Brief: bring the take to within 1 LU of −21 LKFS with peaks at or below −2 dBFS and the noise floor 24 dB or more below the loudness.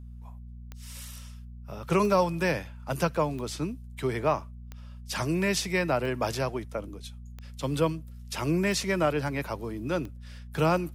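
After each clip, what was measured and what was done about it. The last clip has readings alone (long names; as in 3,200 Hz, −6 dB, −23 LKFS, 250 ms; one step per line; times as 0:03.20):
number of clicks 8; mains hum 60 Hz; hum harmonics up to 240 Hz; level of the hum −41 dBFS; integrated loudness −29.0 LKFS; sample peak −11.0 dBFS; target loudness −21.0 LKFS
→ click removal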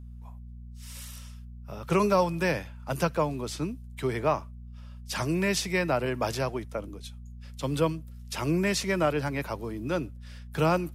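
number of clicks 0; mains hum 60 Hz; hum harmonics up to 240 Hz; level of the hum −41 dBFS
→ hum removal 60 Hz, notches 4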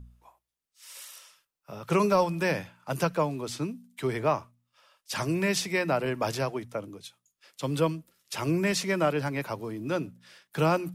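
mains hum none found; integrated loudness −29.0 LKFS; sample peak −11.5 dBFS; target loudness −21.0 LKFS
→ level +8 dB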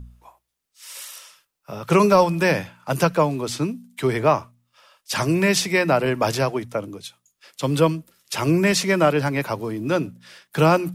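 integrated loudness −21.0 LKFS; sample peak −3.5 dBFS; background noise floor −78 dBFS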